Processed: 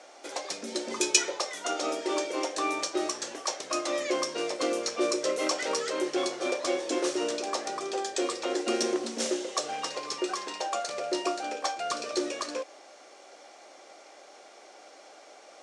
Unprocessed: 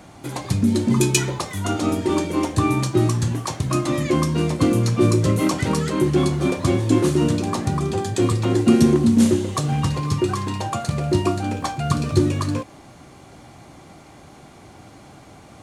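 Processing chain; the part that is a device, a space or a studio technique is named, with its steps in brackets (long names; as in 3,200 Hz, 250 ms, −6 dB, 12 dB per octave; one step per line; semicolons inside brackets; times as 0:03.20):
phone speaker on a table (loudspeaker in its box 430–8,600 Hz, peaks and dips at 560 Hz +5 dB, 1,000 Hz −6 dB, 5,500 Hz +7 dB)
level −3.5 dB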